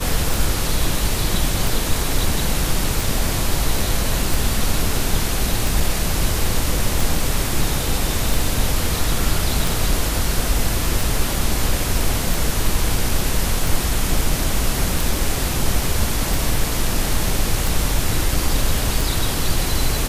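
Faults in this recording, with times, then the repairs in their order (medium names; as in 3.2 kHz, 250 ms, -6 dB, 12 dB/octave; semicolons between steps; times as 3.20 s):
tick 45 rpm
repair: de-click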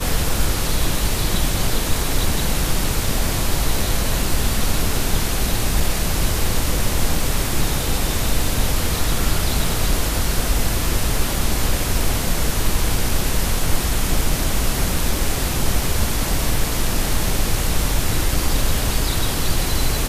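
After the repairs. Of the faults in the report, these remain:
nothing left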